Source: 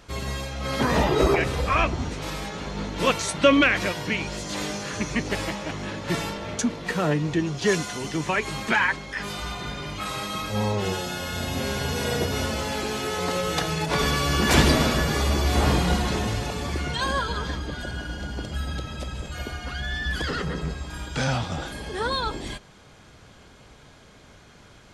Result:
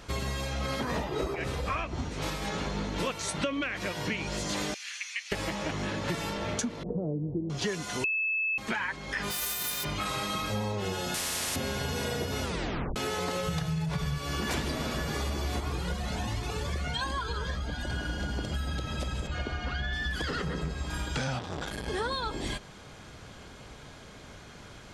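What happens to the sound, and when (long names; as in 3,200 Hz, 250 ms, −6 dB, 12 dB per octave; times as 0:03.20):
0:00.66–0:02.48: shaped tremolo triangle 3.9 Hz, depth 50%
0:04.74–0:05.32: four-pole ladder high-pass 1,900 Hz, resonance 40%
0:06.83–0:07.50: inverse Chebyshev low-pass filter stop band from 1,900 Hz, stop band 60 dB
0:08.04–0:08.58: beep over 2,610 Hz −14.5 dBFS
0:09.30–0:09.83: spectral envelope flattened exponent 0.1
0:11.14–0:11.56: every bin compressed towards the loudest bin 10 to 1
0:12.43: tape stop 0.53 s
0:13.47–0:14.18: low shelf with overshoot 200 Hz +8.5 dB, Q 3
0:15.60–0:17.90: flanger whose copies keep moving one way rising 1.3 Hz
0:19.27–0:19.93: high-frequency loss of the air 120 metres
0:21.39–0:21.88: saturating transformer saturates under 780 Hz
whole clip: downward compressor 10 to 1, threshold −31 dBFS; level +2.5 dB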